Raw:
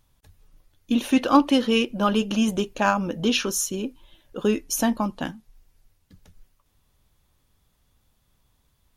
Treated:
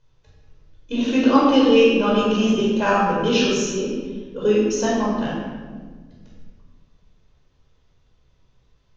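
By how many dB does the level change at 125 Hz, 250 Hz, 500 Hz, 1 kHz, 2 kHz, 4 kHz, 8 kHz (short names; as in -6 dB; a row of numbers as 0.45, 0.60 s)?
+3.5, +3.5, +8.5, +3.0, +3.5, +2.5, -2.5 dB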